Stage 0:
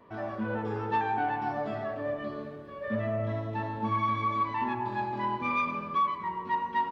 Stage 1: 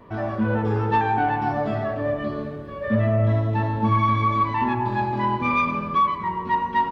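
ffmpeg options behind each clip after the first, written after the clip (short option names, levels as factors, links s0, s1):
-af "lowshelf=f=140:g=11.5,volume=2.24"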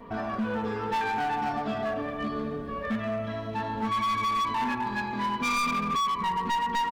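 -filter_complex "[0:a]acrossover=split=1300[s0][s1];[s0]acompressor=threshold=0.0355:ratio=6[s2];[s2][s1]amix=inputs=2:normalize=0,aecho=1:1:4.3:0.67,asoftclip=type=hard:threshold=0.0596"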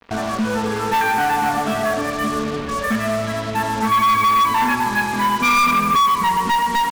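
-filter_complex "[0:a]acrossover=split=240|1300|1900[s0][s1][s2][s3];[s2]dynaudnorm=f=350:g=5:m=2.51[s4];[s0][s1][s4][s3]amix=inputs=4:normalize=0,acrusher=bits=5:mix=0:aa=0.5,volume=2.66"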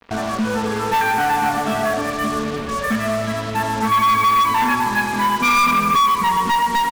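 -af "aecho=1:1:364:0.168"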